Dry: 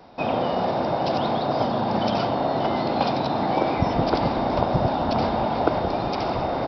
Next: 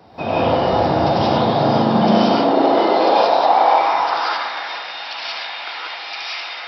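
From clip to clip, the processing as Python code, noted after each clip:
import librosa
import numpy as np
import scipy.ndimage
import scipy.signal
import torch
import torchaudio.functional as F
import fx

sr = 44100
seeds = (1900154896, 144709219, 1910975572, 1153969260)

y = fx.filter_sweep_highpass(x, sr, from_hz=76.0, to_hz=2200.0, start_s=0.89, end_s=4.77, q=1.9)
y = fx.rev_gated(y, sr, seeds[0], gate_ms=210, shape='rising', drr_db=-6.5)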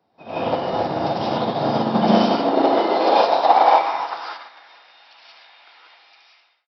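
y = fx.fade_out_tail(x, sr, length_s=0.72)
y = scipy.signal.sosfilt(scipy.signal.butter(2, 130.0, 'highpass', fs=sr, output='sos'), y)
y = fx.upward_expand(y, sr, threshold_db=-26.0, expansion=2.5)
y = y * 10.0 ** (2.0 / 20.0)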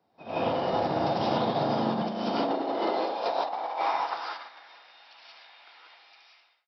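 y = fx.over_compress(x, sr, threshold_db=-21.0, ratio=-1.0)
y = y * 10.0 ** (-7.0 / 20.0)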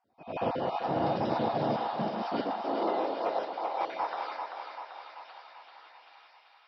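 y = fx.spec_dropout(x, sr, seeds[1], share_pct=21)
y = fx.high_shelf(y, sr, hz=3000.0, db=-10.0)
y = fx.echo_thinned(y, sr, ms=389, feedback_pct=65, hz=450.0, wet_db=-5.0)
y = y * 10.0 ** (-1.5 / 20.0)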